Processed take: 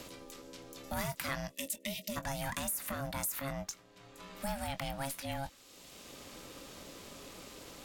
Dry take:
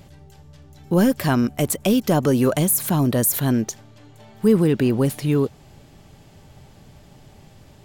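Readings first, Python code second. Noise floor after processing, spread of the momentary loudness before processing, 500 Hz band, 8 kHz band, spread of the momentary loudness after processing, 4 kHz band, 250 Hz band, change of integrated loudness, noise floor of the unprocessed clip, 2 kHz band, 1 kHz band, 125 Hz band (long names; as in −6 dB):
−60 dBFS, 5 LU, −20.5 dB, −13.5 dB, 14 LU, −9.0 dB, −24.5 dB, −20.0 dB, −49 dBFS, −9.0 dB, −11.0 dB, −21.5 dB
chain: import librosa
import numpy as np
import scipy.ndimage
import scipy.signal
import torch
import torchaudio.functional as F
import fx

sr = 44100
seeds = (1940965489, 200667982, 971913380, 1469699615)

y = fx.spec_box(x, sr, start_s=1.52, length_s=0.64, low_hz=220.0, high_hz=2200.0, gain_db=-24)
y = fx.dynamic_eq(y, sr, hz=1400.0, q=1.0, threshold_db=-41.0, ratio=4.0, max_db=6)
y = y * np.sin(2.0 * np.pi * 410.0 * np.arange(len(y)) / sr)
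y = 10.0 ** (-10.0 / 20.0) * np.tanh(y / 10.0 ** (-10.0 / 20.0))
y = fx.tone_stack(y, sr, knobs='5-5-5')
y = fx.doubler(y, sr, ms=22.0, db=-12.0)
y = fx.band_squash(y, sr, depth_pct=70)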